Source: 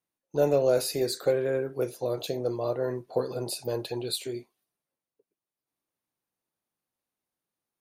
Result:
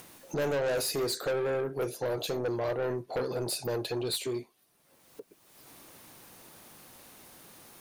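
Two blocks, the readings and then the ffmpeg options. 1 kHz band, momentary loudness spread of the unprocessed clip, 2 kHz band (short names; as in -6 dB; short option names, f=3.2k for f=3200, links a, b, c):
0.0 dB, 9 LU, +4.0 dB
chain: -af "acompressor=mode=upward:threshold=-30dB:ratio=2.5,asoftclip=type=tanh:threshold=-29.5dB,volume=3dB"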